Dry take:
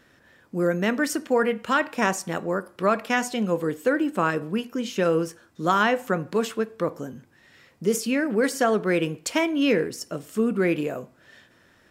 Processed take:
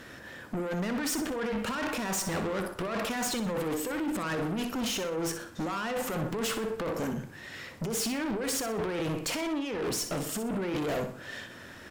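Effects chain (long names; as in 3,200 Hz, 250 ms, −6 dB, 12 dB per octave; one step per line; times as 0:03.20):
compressor whose output falls as the input rises −30 dBFS, ratio −1
tube saturation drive 36 dB, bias 0.4
on a send: repeating echo 62 ms, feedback 35%, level −10 dB
on the sum: level +6.5 dB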